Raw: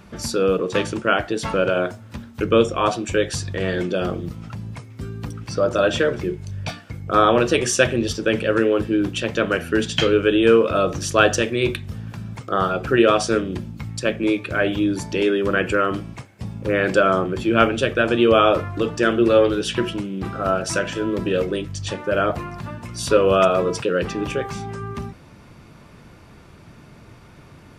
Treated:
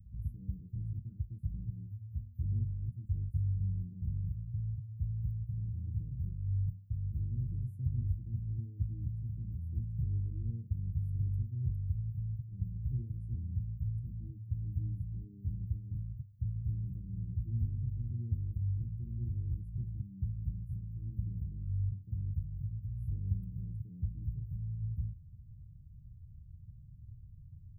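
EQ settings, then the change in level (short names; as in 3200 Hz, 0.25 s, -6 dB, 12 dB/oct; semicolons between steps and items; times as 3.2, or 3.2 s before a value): inverse Chebyshev band-stop 600–6000 Hz, stop band 80 dB; bell 8900 Hz -6 dB 0.76 oct; 0.0 dB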